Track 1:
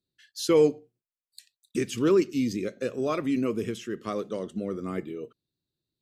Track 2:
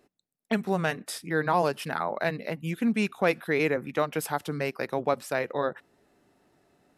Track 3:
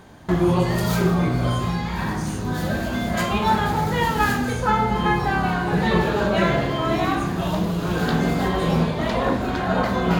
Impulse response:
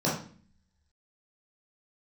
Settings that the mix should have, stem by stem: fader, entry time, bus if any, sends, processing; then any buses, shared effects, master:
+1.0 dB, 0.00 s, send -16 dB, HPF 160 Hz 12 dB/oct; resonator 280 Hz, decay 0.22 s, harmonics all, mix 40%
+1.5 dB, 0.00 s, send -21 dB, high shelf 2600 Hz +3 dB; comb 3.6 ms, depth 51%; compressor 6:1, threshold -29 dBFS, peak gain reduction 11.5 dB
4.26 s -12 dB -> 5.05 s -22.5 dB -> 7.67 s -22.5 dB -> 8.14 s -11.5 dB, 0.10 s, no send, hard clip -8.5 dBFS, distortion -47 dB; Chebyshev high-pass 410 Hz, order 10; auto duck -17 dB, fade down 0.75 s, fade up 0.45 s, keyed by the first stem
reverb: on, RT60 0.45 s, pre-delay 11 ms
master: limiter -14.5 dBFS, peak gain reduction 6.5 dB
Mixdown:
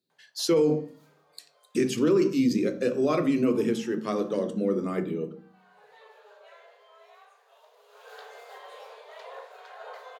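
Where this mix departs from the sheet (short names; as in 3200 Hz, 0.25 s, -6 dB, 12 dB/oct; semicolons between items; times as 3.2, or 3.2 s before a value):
stem 1: missing resonator 280 Hz, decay 0.22 s, harmonics all, mix 40%; stem 2: muted; stem 3 -12.0 dB -> -19.5 dB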